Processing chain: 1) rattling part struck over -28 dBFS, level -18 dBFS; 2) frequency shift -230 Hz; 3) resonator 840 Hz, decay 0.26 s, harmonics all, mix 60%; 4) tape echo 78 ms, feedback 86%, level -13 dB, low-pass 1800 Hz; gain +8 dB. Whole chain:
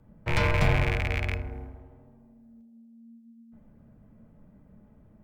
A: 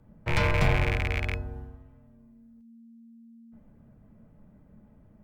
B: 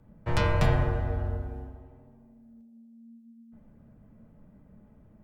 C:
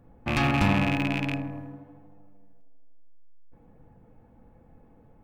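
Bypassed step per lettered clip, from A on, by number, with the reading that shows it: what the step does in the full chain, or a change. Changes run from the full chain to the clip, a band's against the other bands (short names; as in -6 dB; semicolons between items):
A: 4, echo-to-direct -26.5 dB to none; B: 1, 2 kHz band -6.5 dB; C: 2, 250 Hz band +9.0 dB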